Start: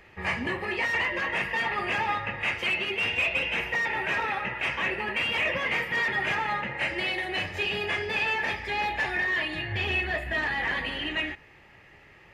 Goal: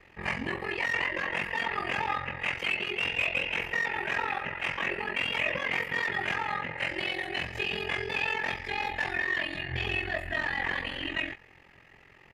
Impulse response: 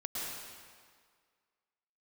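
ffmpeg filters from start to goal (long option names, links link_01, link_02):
-filter_complex "[0:a]asplit=2[link_01][link_02];[link_02]adelay=21,volume=-14dB[link_03];[link_01][link_03]amix=inputs=2:normalize=0,aeval=exprs='val(0)*sin(2*PI*22*n/s)':channel_layout=same"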